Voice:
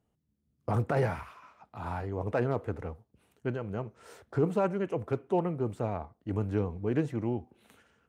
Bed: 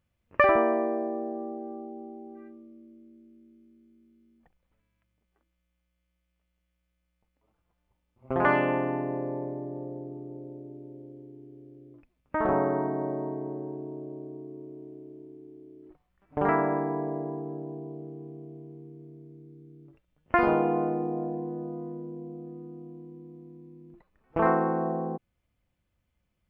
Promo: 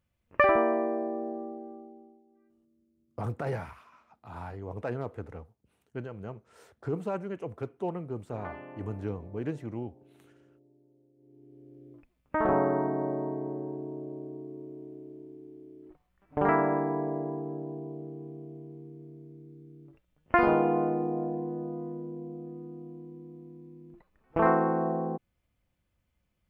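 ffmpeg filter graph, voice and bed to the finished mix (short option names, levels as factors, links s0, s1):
-filter_complex "[0:a]adelay=2500,volume=0.562[s0];[1:a]volume=8.41,afade=t=out:st=1.3:d=0.93:silence=0.11885,afade=t=in:st=11.16:d=0.74:silence=0.1[s1];[s0][s1]amix=inputs=2:normalize=0"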